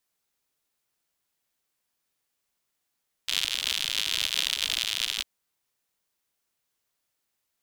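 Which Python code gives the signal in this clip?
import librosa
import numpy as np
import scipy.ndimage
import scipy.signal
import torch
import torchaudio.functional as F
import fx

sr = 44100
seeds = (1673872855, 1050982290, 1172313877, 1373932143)

y = fx.rain(sr, seeds[0], length_s=1.95, drops_per_s=100.0, hz=3300.0, bed_db=-30)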